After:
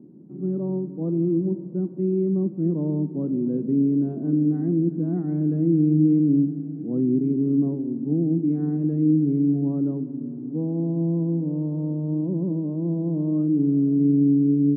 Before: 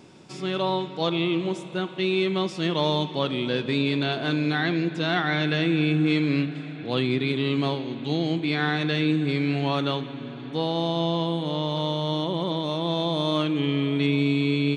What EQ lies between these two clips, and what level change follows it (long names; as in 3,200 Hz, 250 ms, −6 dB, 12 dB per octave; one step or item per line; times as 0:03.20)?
flat-topped band-pass 230 Hz, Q 1.3
high-frequency loss of the air 440 metres
+7.0 dB